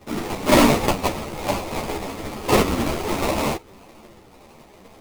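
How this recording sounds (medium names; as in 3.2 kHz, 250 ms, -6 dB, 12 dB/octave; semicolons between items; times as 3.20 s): phasing stages 12, 0.7 Hz, lowest notch 560–2000 Hz; aliases and images of a low sample rate 1.6 kHz, jitter 20%; a shimmering, thickened sound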